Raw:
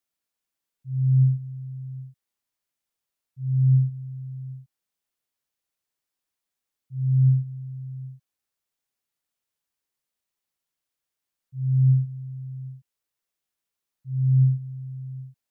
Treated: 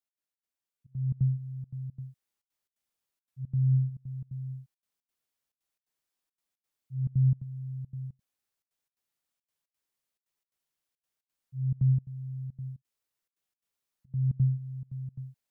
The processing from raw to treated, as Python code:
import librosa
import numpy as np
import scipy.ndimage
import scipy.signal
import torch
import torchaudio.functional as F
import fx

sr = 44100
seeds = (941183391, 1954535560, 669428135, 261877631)

y = fx.rider(x, sr, range_db=4, speed_s=0.5)
y = fx.step_gate(y, sr, bpm=174, pattern='x.xx.xxxx', floor_db=-24.0, edge_ms=4.5)
y = y * librosa.db_to_amplitude(-5.5)